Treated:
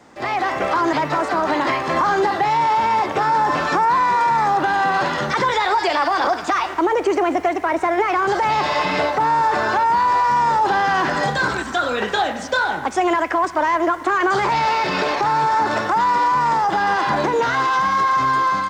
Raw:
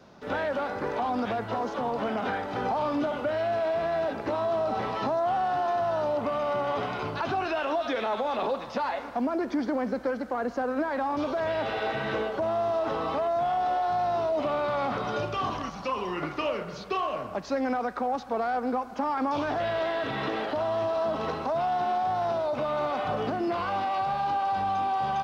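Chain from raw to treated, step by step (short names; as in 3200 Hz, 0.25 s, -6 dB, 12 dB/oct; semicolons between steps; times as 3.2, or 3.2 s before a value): AGC gain up to 5.5 dB; speed mistake 33 rpm record played at 45 rpm; gain +4.5 dB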